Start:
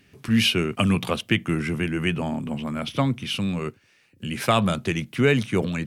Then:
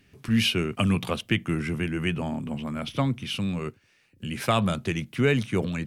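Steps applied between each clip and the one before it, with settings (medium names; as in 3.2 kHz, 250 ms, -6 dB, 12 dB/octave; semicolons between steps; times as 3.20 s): bass shelf 66 Hz +8.5 dB; trim -3.5 dB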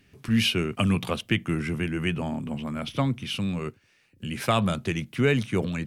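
no audible change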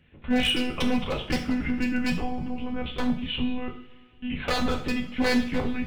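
monotone LPC vocoder at 8 kHz 250 Hz; wavefolder -18.5 dBFS; two-slope reverb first 0.47 s, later 2.8 s, from -21 dB, DRR 1 dB; trim -1.5 dB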